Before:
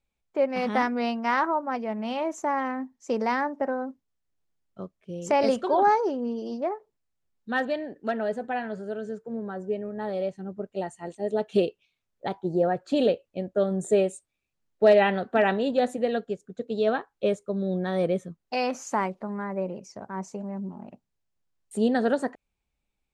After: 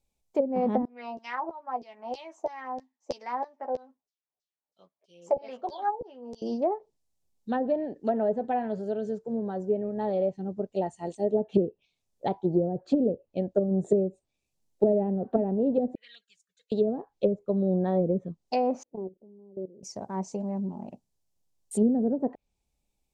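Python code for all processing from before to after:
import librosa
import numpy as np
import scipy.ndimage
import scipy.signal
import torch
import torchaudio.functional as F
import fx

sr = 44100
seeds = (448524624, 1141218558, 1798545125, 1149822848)

y = fx.chain(x, sr, fx.filter_lfo_bandpass(shape='saw_down', hz=3.1, low_hz=530.0, high_hz=5500.0, q=2.6),
    fx.doubler(ms=12.0, db=-6), at=(0.85, 6.42))
y = fx.chain(y, sr, fx.cheby2_highpass(hz=860.0, order=4, stop_db=40),
    fx.high_shelf(hz=4400.0, db=-11.5),
    fx.env_flanger(rest_ms=2.4, full_db=-41.0), at=(15.95, 16.72))
y = fx.chain(y, sr, fx.ladder_lowpass(hz=460.0, resonance_pct=55),
    fx.level_steps(step_db=18), at=(18.83, 19.83))
y = fx.env_lowpass_down(y, sr, base_hz=320.0, full_db=-20.0)
y = fx.curve_eq(y, sr, hz=(850.0, 1400.0, 5900.0), db=(0, -12, 4))
y = y * 10.0 ** (2.5 / 20.0)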